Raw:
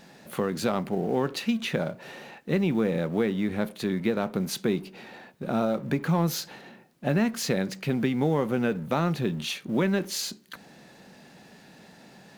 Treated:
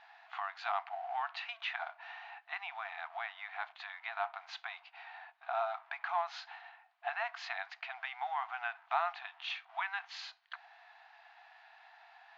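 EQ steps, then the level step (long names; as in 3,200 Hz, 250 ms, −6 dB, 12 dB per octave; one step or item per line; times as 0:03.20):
linear-phase brick-wall high-pass 660 Hz
elliptic low-pass filter 6,800 Hz
high-frequency loss of the air 390 metres
+1.0 dB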